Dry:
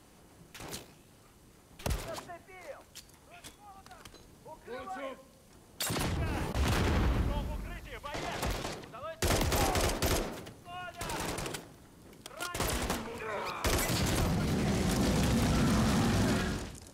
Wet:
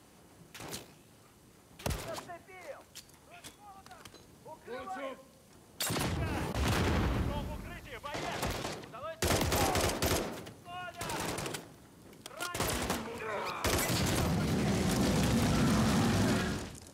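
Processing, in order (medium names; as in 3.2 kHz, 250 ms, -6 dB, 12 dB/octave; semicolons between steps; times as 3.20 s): high-pass 69 Hz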